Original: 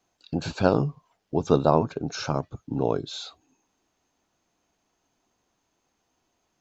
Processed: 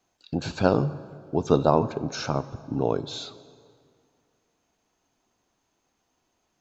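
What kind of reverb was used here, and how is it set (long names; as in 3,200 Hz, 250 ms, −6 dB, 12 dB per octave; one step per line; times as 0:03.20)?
dense smooth reverb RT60 2.2 s, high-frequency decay 0.7×, DRR 14.5 dB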